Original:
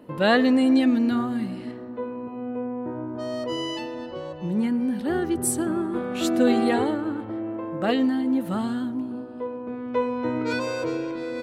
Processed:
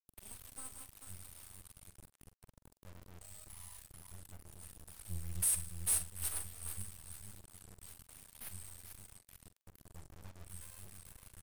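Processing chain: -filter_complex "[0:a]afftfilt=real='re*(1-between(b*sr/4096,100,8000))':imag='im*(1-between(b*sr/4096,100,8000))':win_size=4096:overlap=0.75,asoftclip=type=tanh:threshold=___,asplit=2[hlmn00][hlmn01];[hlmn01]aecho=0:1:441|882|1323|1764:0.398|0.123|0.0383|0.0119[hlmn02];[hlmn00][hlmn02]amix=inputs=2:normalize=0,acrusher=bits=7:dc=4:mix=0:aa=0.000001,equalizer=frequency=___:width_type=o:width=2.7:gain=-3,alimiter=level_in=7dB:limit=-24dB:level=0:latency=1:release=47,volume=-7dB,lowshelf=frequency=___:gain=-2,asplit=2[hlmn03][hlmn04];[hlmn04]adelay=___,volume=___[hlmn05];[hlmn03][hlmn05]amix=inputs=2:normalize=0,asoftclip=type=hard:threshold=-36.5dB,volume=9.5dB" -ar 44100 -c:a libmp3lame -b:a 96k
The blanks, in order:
-19.5dB, 210, 490, 45, -13dB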